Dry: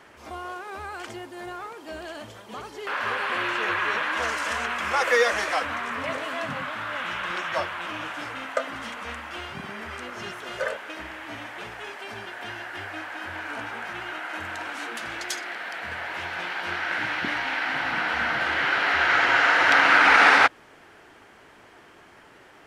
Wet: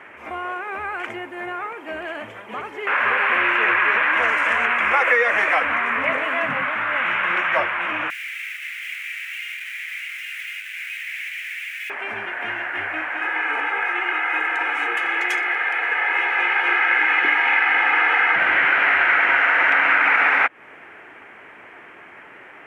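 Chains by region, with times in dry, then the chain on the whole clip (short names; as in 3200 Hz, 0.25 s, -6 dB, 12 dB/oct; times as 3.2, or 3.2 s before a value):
8.1–11.9 infinite clipping + steep high-pass 2000 Hz
13.21–18.36 HPF 310 Hz + comb 2.4 ms, depth 84%
whole clip: HPF 220 Hz 6 dB/oct; resonant high shelf 3200 Hz -11.5 dB, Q 3; compressor 12:1, threshold -19 dBFS; gain +6 dB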